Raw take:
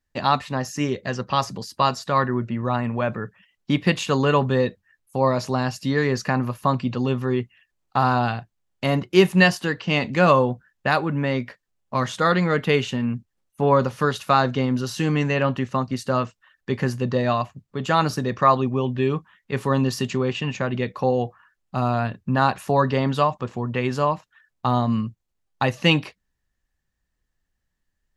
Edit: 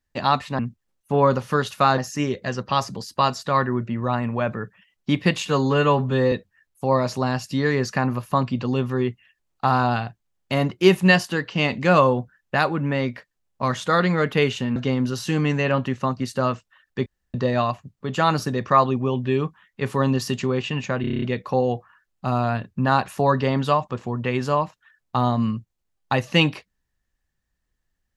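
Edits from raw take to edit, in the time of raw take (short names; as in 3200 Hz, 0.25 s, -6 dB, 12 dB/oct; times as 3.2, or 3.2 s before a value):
4.06–4.64 stretch 1.5×
13.08–14.47 move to 0.59
16.77–17.05 room tone
20.72 stutter 0.03 s, 8 plays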